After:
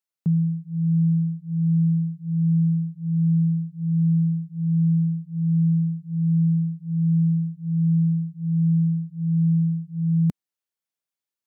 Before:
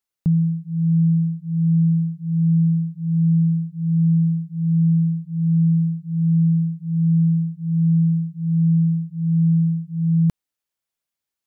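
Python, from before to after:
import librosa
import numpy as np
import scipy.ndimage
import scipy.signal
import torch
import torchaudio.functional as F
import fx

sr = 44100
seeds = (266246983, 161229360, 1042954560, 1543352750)

y = fx.dynamic_eq(x, sr, hz=220.0, q=1.3, threshold_db=-30.0, ratio=4.0, max_db=5)
y = scipy.signal.sosfilt(scipy.signal.butter(2, 99.0, 'highpass', fs=sr, output='sos'), y)
y = y * 10.0 ** (-5.5 / 20.0)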